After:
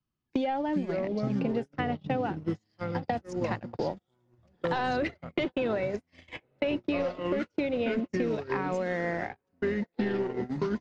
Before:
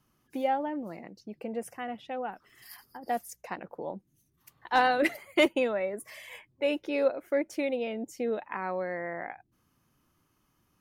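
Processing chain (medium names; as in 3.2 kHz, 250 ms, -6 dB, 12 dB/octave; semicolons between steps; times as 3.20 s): waveshaping leveller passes 1; peak limiter -21 dBFS, peak gain reduction 8 dB; ever faster or slower copies 259 ms, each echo -6 st, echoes 3, each echo -6 dB; compression 10:1, threshold -33 dBFS, peak gain reduction 11.5 dB; low-pass 5 kHz 24 dB/octave; treble shelf 3.1 kHz +8 dB; echo that smears into a reverb 860 ms, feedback 52%, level -15.5 dB; gate -36 dBFS, range -44 dB; bass shelf 260 Hz +10 dB; three bands compressed up and down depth 70%; trim +4.5 dB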